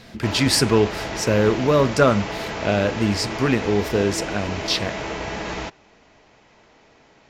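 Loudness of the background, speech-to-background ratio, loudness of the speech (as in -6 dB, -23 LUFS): -29.0 LUFS, 8.0 dB, -21.0 LUFS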